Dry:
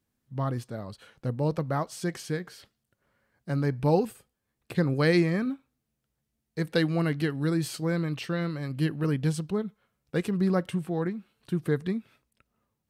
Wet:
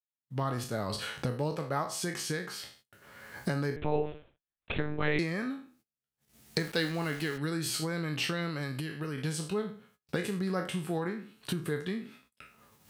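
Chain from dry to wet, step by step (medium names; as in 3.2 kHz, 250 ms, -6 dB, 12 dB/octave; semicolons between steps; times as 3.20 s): spectral sustain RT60 0.37 s; recorder AGC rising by 26 dB/s; gate -55 dBFS, range -29 dB; high-pass 73 Hz; tilt shelf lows -3.5 dB, about 910 Hz; 8.61–9.18 s: compression, threshold -27 dBFS, peak gain reduction 5 dB; feedback comb 420 Hz, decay 0.17 s, harmonics all, mix 50%; 3.76–5.19 s: monotone LPC vocoder at 8 kHz 150 Hz; 6.59–7.38 s: small samples zeroed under -42.5 dBFS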